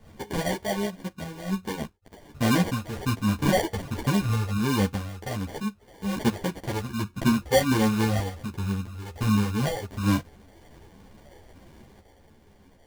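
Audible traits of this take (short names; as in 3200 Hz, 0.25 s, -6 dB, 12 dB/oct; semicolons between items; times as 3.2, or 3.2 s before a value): phasing stages 12, 1.3 Hz, lowest notch 230–1400 Hz; aliases and images of a low sample rate 1300 Hz, jitter 0%; random-step tremolo; a shimmering, thickened sound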